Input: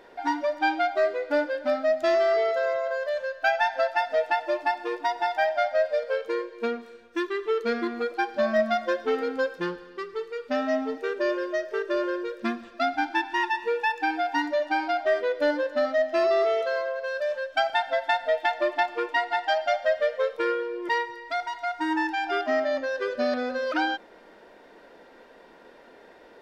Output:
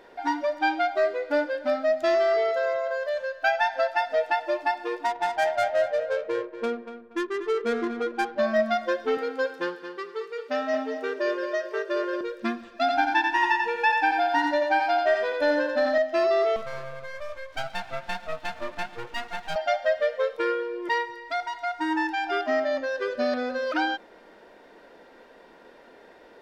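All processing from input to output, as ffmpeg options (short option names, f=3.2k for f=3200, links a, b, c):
-filter_complex "[0:a]asettb=1/sr,asplit=3[a][b][c];[a]atrim=end=5.054[d];[b]atrim=start=5.05:end=8.39,asetpts=PTS-STARTPTS,afade=t=in:d=0.004:c=qsin,afade=t=out:st=3.336:d=0.004:c=qsin,adynamicsmooth=sensitivity=4:basefreq=1k,asplit=2[e][f];[f]adelay=238,lowpass=f=3.5k:p=1,volume=-10.5dB,asplit=2[g][h];[h]adelay=238,lowpass=f=3.5k:p=1,volume=0.27,asplit=2[i][j];[j]adelay=238,lowpass=f=3.5k:p=1,volume=0.27[k];[e][g][i][k]amix=inputs=4:normalize=0,atrim=end_sample=147294[l];[c]atrim=start=8.386[m];[d][l]acrossfade=d=0.004:c1=hsin:c2=qsin[n];[n][m]acrossfade=d=0.004:c1=qsin:c2=hsin,asettb=1/sr,asplit=3[o][p][q];[o]atrim=end=9.174[r];[p]atrim=start=9.17:end=12.21,asetpts=PTS-STARTPTS,afade=t=in:d=0.004:c=qsin,afade=t=out:st=3.036:d=0.004:c=qsin,highpass=330,aecho=1:1:223|446|669:0.335|0.0804|0.0193,atrim=end_sample=134064[s];[q]atrim=start=12.206[t];[r][s]acrossfade=d=0.004:c1=hsin:c2=qsin[u];[u][t]acrossfade=d=0.004:c1=qsin:c2=hsin,asettb=1/sr,asplit=3[v][w][x];[v]atrim=end=12.764[y];[w]atrim=start=12.76:end=15.98,asetpts=PTS-STARTPTS,afade=t=in:d=0.004:c=qsin,afade=t=out:st=3.216:d=0.004:c=qsin,aecho=1:1:1.2:0.47,atrim=end_sample=142002,aecho=1:1:88|176|264|352|440|528:0.631|0.278|0.122|0.0537|0.0236|0.0104,atrim=end_sample=142002[z];[x]atrim=start=15.976[aa];[y][z]acrossfade=d=0.004:c1=hsin:c2=qsin[ab];[ab][aa]acrossfade=d=0.004:c1=qsin:c2=hsin,asettb=1/sr,asplit=3[ac][ad][ae];[ac]atrim=end=16.564[af];[ad]atrim=start=16.56:end=19.56,asetpts=PTS-STARTPTS,afade=t=in:d=0.004:c=qsin,afade=t=out:st=2.996:d=0.004:c=qsin,acompressor=mode=upward:threshold=-26dB:ratio=2.5:attack=3.2:release=140:knee=2.83:detection=peak,aeval=exprs='max(val(0),0)':c=same,flanger=delay=1.4:depth=6.8:regen=-70:speed=1.1:shape=triangular[ag];[ae]atrim=start=19.556[ah];[af][ag]acrossfade=d=0.004:c1=hsin:c2=qsin[ai];[ai][ah]acrossfade=d=0.004:c1=qsin:c2=hsin"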